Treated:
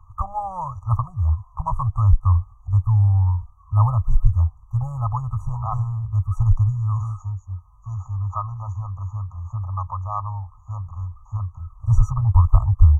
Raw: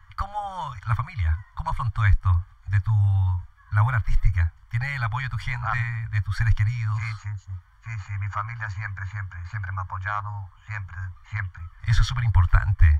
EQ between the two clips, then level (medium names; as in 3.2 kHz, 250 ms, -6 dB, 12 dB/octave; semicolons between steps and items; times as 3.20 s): brick-wall FIR band-stop 1.3–5.8 kHz; treble shelf 2.7 kHz -9 dB; +4.0 dB